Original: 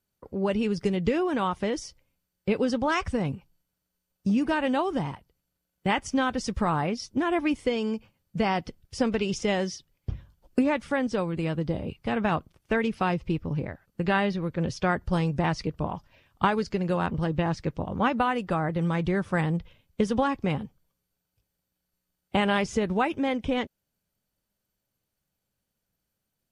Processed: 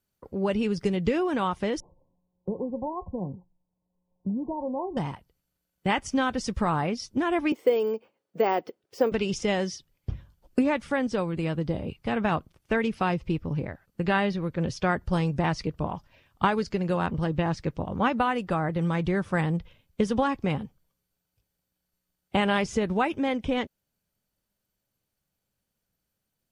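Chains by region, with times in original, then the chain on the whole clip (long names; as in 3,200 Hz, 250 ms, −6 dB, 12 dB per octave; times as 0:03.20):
0:01.80–0:04.97: linear-phase brick-wall low-pass 1,100 Hz + tuned comb filter 180 Hz, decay 0.17 s + multiband upward and downward compressor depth 40%
0:07.52–0:09.12: high-pass with resonance 410 Hz, resonance Q 2.2 + high-shelf EQ 2,600 Hz −9.5 dB + bad sample-rate conversion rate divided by 2×, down filtered, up hold
whole clip: no processing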